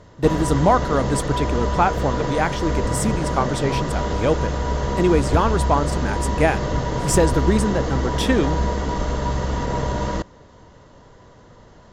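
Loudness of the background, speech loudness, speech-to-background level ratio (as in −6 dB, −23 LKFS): −24.0 LKFS, −22.5 LKFS, 1.5 dB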